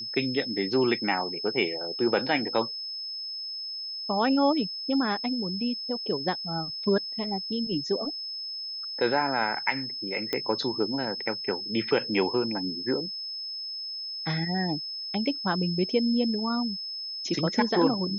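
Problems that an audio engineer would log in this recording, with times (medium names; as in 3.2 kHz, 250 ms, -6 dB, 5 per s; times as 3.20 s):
whine 5.2 kHz -33 dBFS
10.33 s: pop -14 dBFS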